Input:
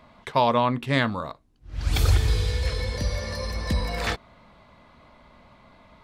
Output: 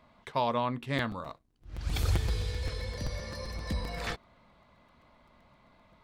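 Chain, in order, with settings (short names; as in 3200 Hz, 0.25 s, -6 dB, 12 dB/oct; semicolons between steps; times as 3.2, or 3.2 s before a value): 1.26–1.76 sample leveller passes 1; crackling interface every 0.13 s, samples 256, repeat, from 0.98; gain -8.5 dB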